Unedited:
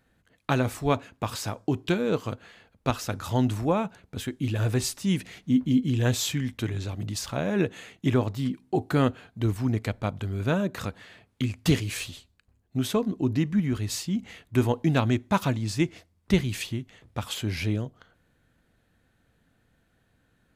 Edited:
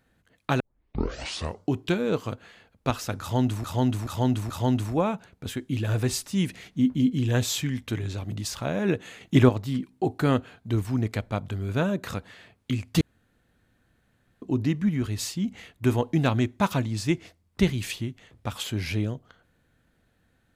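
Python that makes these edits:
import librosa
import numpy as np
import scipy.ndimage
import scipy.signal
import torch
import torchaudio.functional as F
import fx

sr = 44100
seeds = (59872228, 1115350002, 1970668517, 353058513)

y = fx.edit(x, sr, fx.tape_start(start_s=0.6, length_s=1.13),
    fx.repeat(start_s=3.21, length_s=0.43, count=4),
    fx.clip_gain(start_s=7.92, length_s=0.28, db=6.0),
    fx.room_tone_fill(start_s=11.72, length_s=1.41), tone=tone)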